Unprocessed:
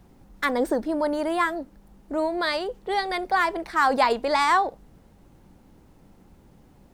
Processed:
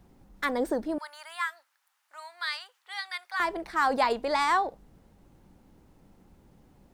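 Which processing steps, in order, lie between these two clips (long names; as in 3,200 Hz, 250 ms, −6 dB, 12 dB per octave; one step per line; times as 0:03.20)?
0:00.98–0:03.40: high-pass filter 1,200 Hz 24 dB per octave
level −4.5 dB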